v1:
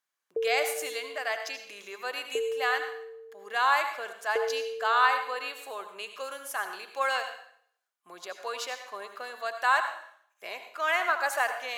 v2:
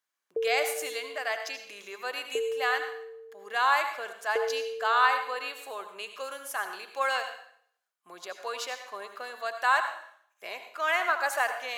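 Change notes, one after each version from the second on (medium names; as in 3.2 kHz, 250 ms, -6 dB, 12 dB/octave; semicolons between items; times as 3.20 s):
no change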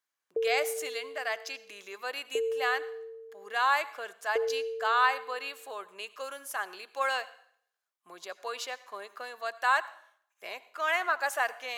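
speech: send -11.5 dB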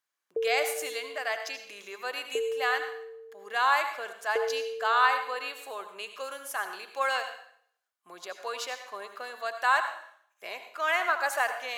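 speech: send +11.0 dB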